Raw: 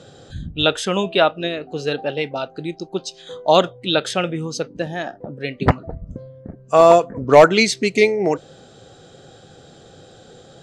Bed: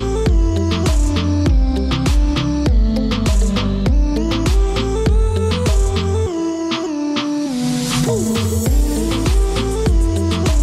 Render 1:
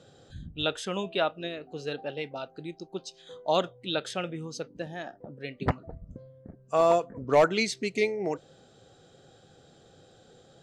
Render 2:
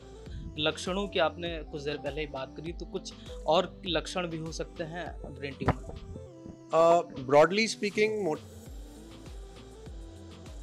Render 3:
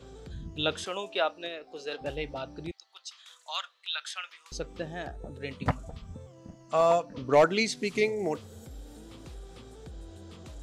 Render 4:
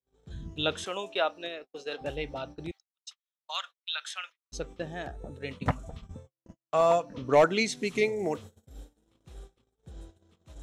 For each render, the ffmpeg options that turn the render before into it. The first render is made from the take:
-af "volume=-11.5dB"
-filter_complex "[1:a]volume=-30.5dB[a];[0:a][a]amix=inputs=2:normalize=0"
-filter_complex "[0:a]asettb=1/sr,asplit=3[a][b][c];[a]atrim=end=0.844[d];[b]atrim=start=0.84:end=2.01,asetpts=PTS-STARTPTS,afade=t=in:d=0.004:c=qsin,afade=t=out:st=1.166:d=0.004:c=qsin,highpass=440[e];[c]atrim=start=2.006[f];[d][e]acrossfade=d=0.004:c1=hsin:c2=qsin[g];[g][f]acrossfade=d=0.004:c1=qsin:c2=hsin,asettb=1/sr,asplit=3[h][i][j];[h]atrim=end=2.714[k];[i]atrim=start=2.71:end=4.52,asetpts=PTS-STARTPTS,afade=t=in:d=0.004:c=qsin,afade=t=out:st=1.806:d=0.004:c=qsin,highpass=f=1.2k:w=0.5412,highpass=f=1.2k:w=1.3066[l];[j]atrim=start=4.516[m];[k][l]acrossfade=d=0.004:c1=hsin:c2=qsin[n];[n][m]acrossfade=d=0.004:c1=qsin:c2=hsin,asettb=1/sr,asplit=3[o][p][q];[o]atrim=end=5.594[r];[p]atrim=start=5.59:end=7.14,asetpts=PTS-STARTPTS,afade=t=in:d=0.004:c=qsin,afade=t=out:st=1.546:d=0.004:c=qsin,equalizer=f=380:w=4:g=-14[s];[q]atrim=start=7.136[t];[r][s]acrossfade=d=0.004:c1=hsin:c2=qsin[u];[u][t]acrossfade=d=0.004:c1=qsin:c2=hsin"
-af "bandreject=f=4.7k:w=8.1,agate=range=-49dB:threshold=-43dB:ratio=16:detection=peak"

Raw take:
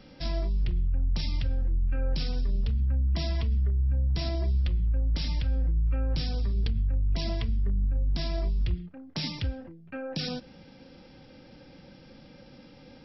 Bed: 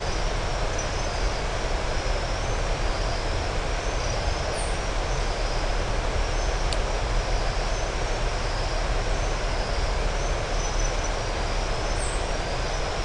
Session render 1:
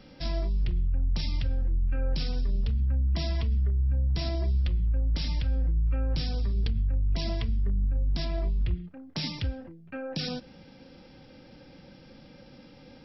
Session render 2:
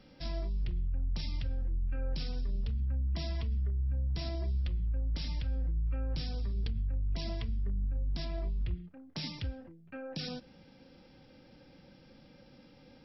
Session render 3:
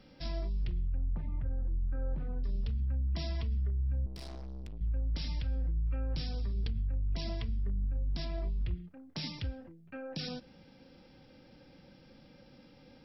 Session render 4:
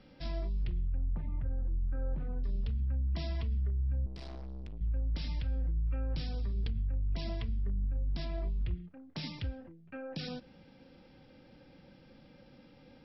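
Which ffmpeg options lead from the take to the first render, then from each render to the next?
-filter_complex "[0:a]asettb=1/sr,asplit=3[a][b][c];[a]atrim=end=8.254[d];[b]atrim=start=8.25:end=8.84,asetpts=PTS-STARTPTS,afade=t=in:d=0.004:c=qsin,afade=t=out:st=0.586:d=0.004:c=qsin,lowpass=3.2k[e];[c]atrim=start=8.836[f];[d][e]acrossfade=d=0.004:c1=hsin:c2=qsin[g];[g][f]acrossfade=d=0.004:c1=qsin:c2=hsin"
-af "volume=-6.5dB"
-filter_complex "[0:a]asettb=1/sr,asplit=3[a][b][c];[a]atrim=end=0.974[d];[b]atrim=start=0.97:end=2.44,asetpts=PTS-STARTPTS,afade=t=in:d=0.004:c=qsin,afade=t=out:st=1.466:d=0.004:c=qsin,lowpass=f=1.5k:w=0.5412,lowpass=f=1.5k:w=1.3066[e];[c]atrim=start=2.436[f];[d][e]acrossfade=d=0.004:c1=hsin:c2=qsin[g];[g][f]acrossfade=d=0.004:c1=qsin:c2=hsin,asettb=1/sr,asplit=3[h][i][j];[h]atrim=end=4.064[k];[i]atrim=start=4.06:end=4.81,asetpts=PTS-STARTPTS,afade=t=in:d=0.004:c=qsin,afade=t=out:st=0.746:d=0.004:c=qsin,aeval=exprs='(tanh(126*val(0)+0.65)-tanh(0.65))/126':c=same[l];[j]atrim=start=4.806[m];[k][l]acrossfade=d=0.004:c1=hsin:c2=qsin[n];[n][m]acrossfade=d=0.004:c1=qsin:c2=hsin"
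-af "lowpass=4.3k"

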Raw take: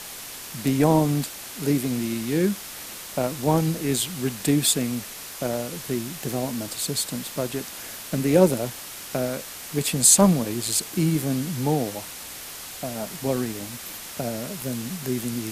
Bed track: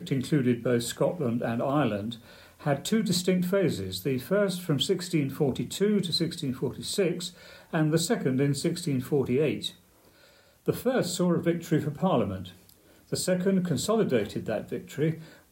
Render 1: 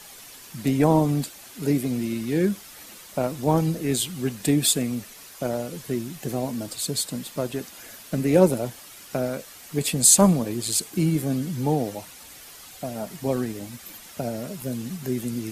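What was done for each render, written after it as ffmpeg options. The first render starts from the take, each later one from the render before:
-af "afftdn=nr=9:nf=-38"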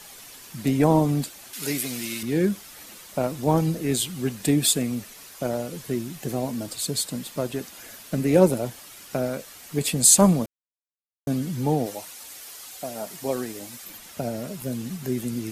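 -filter_complex "[0:a]asettb=1/sr,asplit=3[a][b][c];[a]atrim=end=1.534[d];[b]atrim=start=1.53:end=2.23,asetpts=PTS-STARTPTS,afade=t=in:d=0.004:c=qsin,afade=t=out:st=0.696:d=0.004:c=qsin,tiltshelf=f=880:g=-9.5[e];[c]atrim=start=2.226[f];[d][e]acrossfade=d=0.004:c1=hsin:c2=qsin[g];[g][f]acrossfade=d=0.004:c1=qsin:c2=hsin,asettb=1/sr,asplit=3[h][i][j];[h]atrim=end=11.864[k];[i]atrim=start=11.86:end=13.85,asetpts=PTS-STARTPTS,afade=t=in:d=0.004:c=qsin,afade=t=out:st=1.986:d=0.004:c=qsin,bass=f=250:g=-10,treble=f=4k:g=4[l];[j]atrim=start=13.846[m];[k][l]acrossfade=d=0.004:c1=hsin:c2=qsin[n];[n][m]acrossfade=d=0.004:c1=qsin:c2=hsin,asplit=3[o][p][q];[o]atrim=end=10.46,asetpts=PTS-STARTPTS,afade=t=out:st=10.456:d=0.004:c=hsin[r];[p]atrim=start=10.46:end=11.27,asetpts=PTS-STARTPTS,volume=0[s];[q]atrim=start=11.27,asetpts=PTS-STARTPTS,afade=t=in:d=0.004:c=hsin[t];[r][s][t]concat=n=3:v=0:a=1"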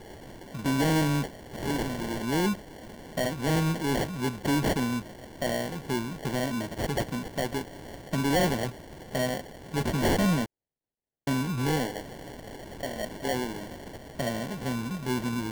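-af "acrusher=samples=35:mix=1:aa=0.000001,asoftclip=type=tanh:threshold=-20.5dB"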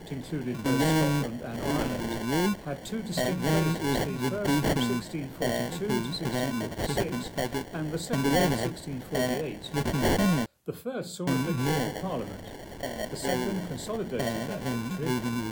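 -filter_complex "[1:a]volume=-8dB[a];[0:a][a]amix=inputs=2:normalize=0"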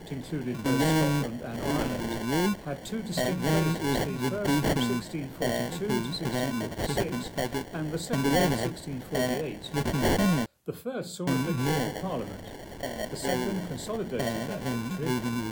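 -af anull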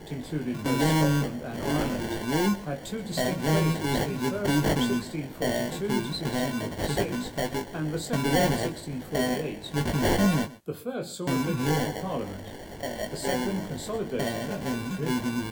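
-filter_complex "[0:a]asplit=2[a][b];[b]adelay=20,volume=-6dB[c];[a][c]amix=inputs=2:normalize=0,aecho=1:1:125:0.119"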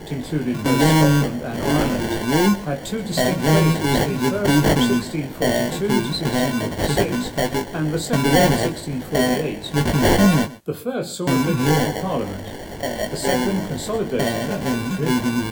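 -af "volume=8dB"

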